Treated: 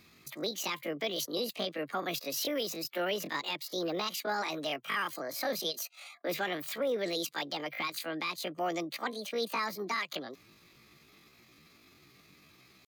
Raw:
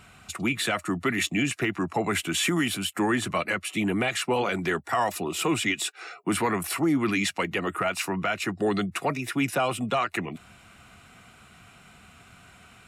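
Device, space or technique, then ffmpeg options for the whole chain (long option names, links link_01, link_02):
chipmunk voice: -filter_complex "[0:a]asettb=1/sr,asplit=3[link_01][link_02][link_03];[link_01]atrim=end=8.784[link_04];[link_02]atrim=start=8.78:end=9.66,asetpts=PTS-STARTPTS,afade=type=in:duration=0.004:curve=qsin,afade=type=out:start_time=0.876:duration=0.004:curve=qsin,lowpass=10000[link_05];[link_03]atrim=start=9.656[link_06];[link_04][link_05]acrossfade=duration=0.004:curve1=hsin:curve2=qsin[link_07];[link_07][link_06]acrossfade=duration=0.004:curve1=qsin:curve2=hsin,asetrate=74167,aresample=44100,atempo=0.594604,volume=-8dB"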